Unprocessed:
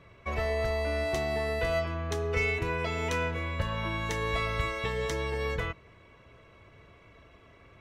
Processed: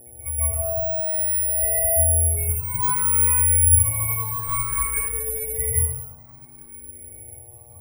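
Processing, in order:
expanding power law on the bin magnitudes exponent 2.8
noise gate with hold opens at −49 dBFS
parametric band 490 Hz −9.5 dB 1.8 octaves
echo ahead of the sound 190 ms −21 dB
convolution reverb RT60 1.1 s, pre-delay 118 ms, DRR −9 dB
hum with harmonics 120 Hz, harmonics 7, −51 dBFS −3 dB per octave
high-frequency loss of the air 150 metres
bad sample-rate conversion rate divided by 4×, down none, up zero stuff
frequency shifter mixed with the dry sound +0.56 Hz

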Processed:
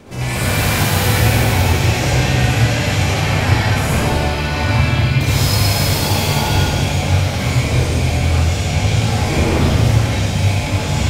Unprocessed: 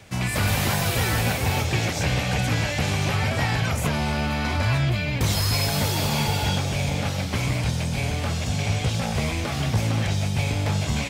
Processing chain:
wind on the microphone 460 Hz −36 dBFS
convolution reverb RT60 1.6 s, pre-delay 57 ms, DRR −7.5 dB
level −1 dB

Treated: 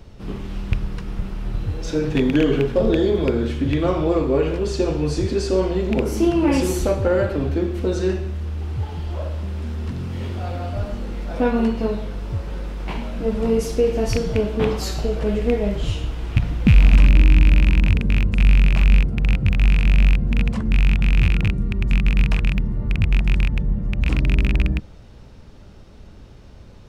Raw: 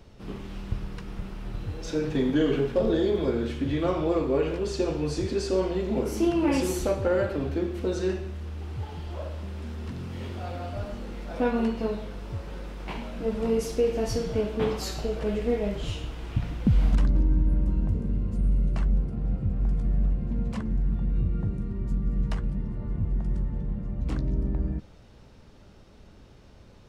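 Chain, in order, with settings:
loose part that buzzes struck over −23 dBFS, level −18 dBFS
low-shelf EQ 140 Hz +5.5 dB
level +5 dB

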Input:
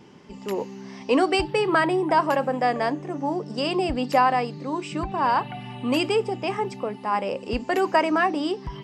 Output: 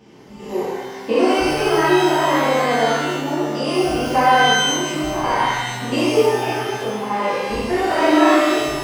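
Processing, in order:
spectrum averaged block by block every 100 ms
0:07.78–0:08.39: flutter between parallel walls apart 7.4 metres, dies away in 0.7 s
reverb with rising layers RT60 1.3 s, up +12 semitones, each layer −8 dB, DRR −9.5 dB
level −3 dB

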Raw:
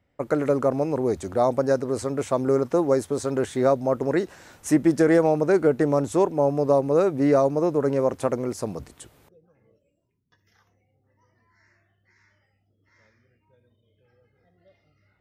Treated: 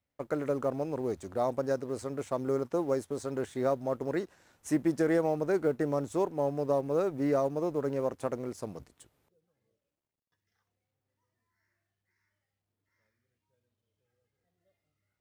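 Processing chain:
mu-law and A-law mismatch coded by A
level −8.5 dB

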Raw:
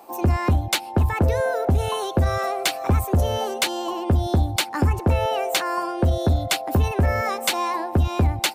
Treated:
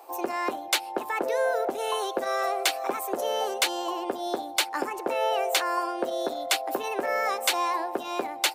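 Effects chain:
high-pass filter 360 Hz 24 dB per octave
level −2 dB

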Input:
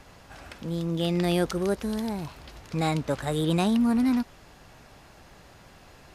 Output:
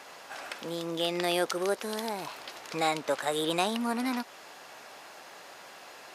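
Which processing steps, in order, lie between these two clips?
high-pass filter 500 Hz 12 dB per octave
in parallel at +0.5 dB: downward compressor, threshold −39 dBFS, peak gain reduction 14.5 dB

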